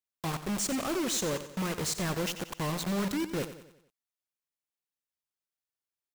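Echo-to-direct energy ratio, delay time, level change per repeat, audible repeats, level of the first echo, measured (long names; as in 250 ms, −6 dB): −11.0 dB, 91 ms, −6.5 dB, 4, −12.0 dB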